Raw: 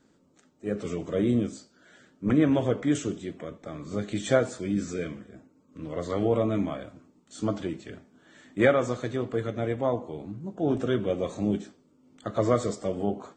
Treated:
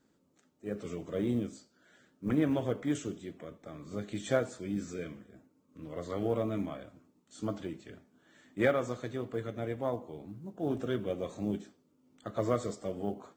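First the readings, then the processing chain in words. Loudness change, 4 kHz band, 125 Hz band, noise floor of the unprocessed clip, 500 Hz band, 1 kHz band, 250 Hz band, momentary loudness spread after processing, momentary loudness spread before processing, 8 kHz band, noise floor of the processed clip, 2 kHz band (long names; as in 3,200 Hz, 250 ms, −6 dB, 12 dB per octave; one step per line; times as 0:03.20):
−7.0 dB, −7.0 dB, −7.0 dB, −64 dBFS, −7.0 dB, −6.5 dB, −7.0 dB, 16 LU, 16 LU, −7.5 dB, −71 dBFS, −6.5 dB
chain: harmonic generator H 7 −36 dB, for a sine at −8 dBFS
log-companded quantiser 8 bits
level −6.5 dB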